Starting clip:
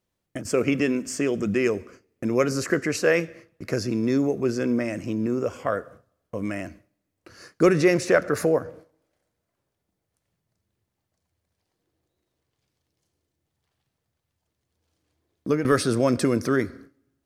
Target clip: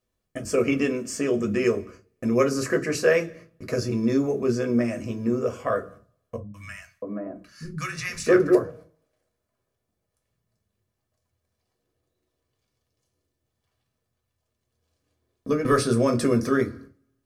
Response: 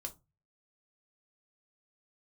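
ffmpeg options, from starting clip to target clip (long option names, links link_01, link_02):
-filter_complex "[0:a]asettb=1/sr,asplit=3[link_01][link_02][link_03];[link_01]atrim=end=6.364[link_04];[link_02]atrim=start=6.36:end=8.55,asetpts=PTS-STARTPTS,afade=type=in:duration=0.004:curve=qsin,afade=type=out:start_time=2.186:duration=0.004:curve=qsin,acrossover=split=160|1200[link_05][link_06][link_07];[link_07]adelay=180[link_08];[link_06]adelay=660[link_09];[link_05][link_09][link_08]amix=inputs=3:normalize=0,atrim=end_sample=96579[link_10];[link_03]atrim=start=8.546[link_11];[link_04][link_10]acrossfade=duration=0.004:curve1=hsin:curve2=qsin[link_12];[link_12][link_11]acrossfade=duration=0.004:curve1=qsin:curve2=hsin[link_13];[1:a]atrim=start_sample=2205,asetrate=48510,aresample=44100[link_14];[link_13][link_14]afir=irnorm=-1:irlink=0,volume=3dB"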